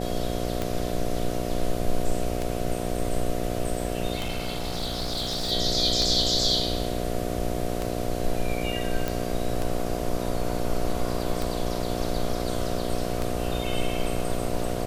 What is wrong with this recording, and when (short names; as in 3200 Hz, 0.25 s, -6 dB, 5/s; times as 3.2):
buzz 60 Hz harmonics 12 -30 dBFS
tick 33 1/3 rpm
4.15–5.52 clipped -24.5 dBFS
9.08 pop